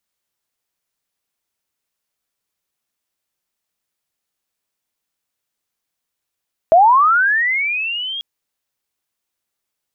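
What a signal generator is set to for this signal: sweep linear 630 Hz -> 3.3 kHz -5.5 dBFS -> -23 dBFS 1.49 s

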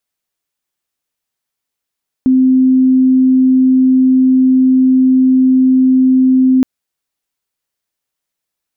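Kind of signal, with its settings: tone sine 259 Hz -6 dBFS 4.37 s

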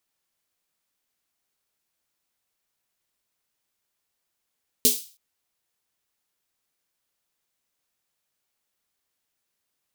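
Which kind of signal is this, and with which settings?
snare drum length 0.32 s, tones 250 Hz, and 430 Hz, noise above 3.4 kHz, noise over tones 9 dB, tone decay 0.21 s, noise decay 0.38 s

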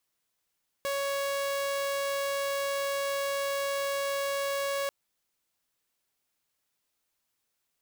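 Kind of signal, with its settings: tone saw 557 Hz -26 dBFS 4.04 s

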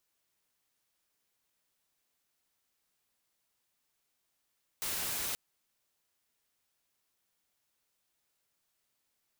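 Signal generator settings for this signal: noise white, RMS -35.5 dBFS 0.53 s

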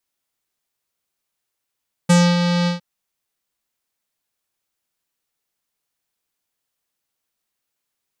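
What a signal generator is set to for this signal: synth note square F3 12 dB/octave, low-pass 4.6 kHz, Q 2.5, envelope 1 oct, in 0.19 s, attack 12 ms, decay 0.26 s, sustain -7 dB, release 0.13 s, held 0.58 s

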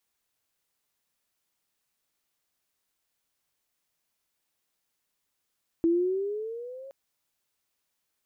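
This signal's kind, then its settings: gliding synth tone sine, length 1.07 s, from 328 Hz, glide +9 st, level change -22 dB, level -19 dB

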